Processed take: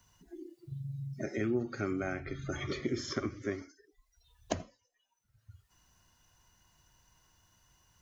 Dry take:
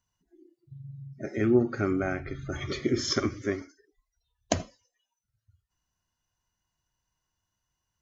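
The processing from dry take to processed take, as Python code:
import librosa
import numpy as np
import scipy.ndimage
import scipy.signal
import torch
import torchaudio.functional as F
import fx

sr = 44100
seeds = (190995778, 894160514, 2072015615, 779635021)

y = fx.band_squash(x, sr, depth_pct=70)
y = y * librosa.db_to_amplitude(-6.5)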